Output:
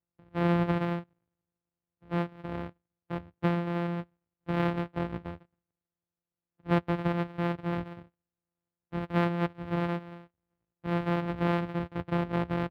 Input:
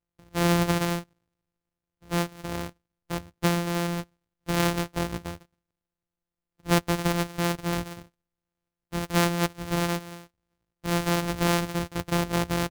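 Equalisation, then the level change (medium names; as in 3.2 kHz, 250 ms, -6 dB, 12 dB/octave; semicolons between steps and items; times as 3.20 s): high-pass 72 Hz; distance through air 490 m; -2.0 dB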